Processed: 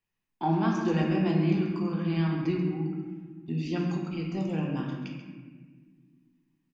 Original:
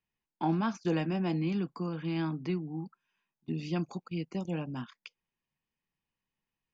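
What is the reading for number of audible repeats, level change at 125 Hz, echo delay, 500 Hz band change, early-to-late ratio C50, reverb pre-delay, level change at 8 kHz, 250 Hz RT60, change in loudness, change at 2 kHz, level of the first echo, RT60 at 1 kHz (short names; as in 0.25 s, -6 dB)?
1, +6.0 dB, 0.135 s, +5.0 dB, 2.0 dB, 3 ms, n/a, 2.7 s, +5.0 dB, +4.5 dB, -9.5 dB, 1.3 s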